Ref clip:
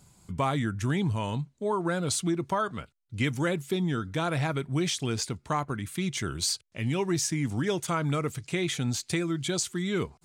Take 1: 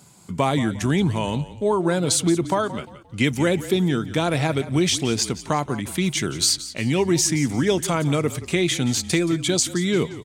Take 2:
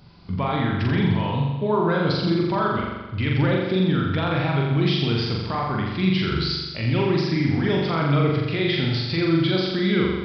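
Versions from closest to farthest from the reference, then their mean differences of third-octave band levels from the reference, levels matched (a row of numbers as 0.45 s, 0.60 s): 1, 2; 4.0 dB, 11.0 dB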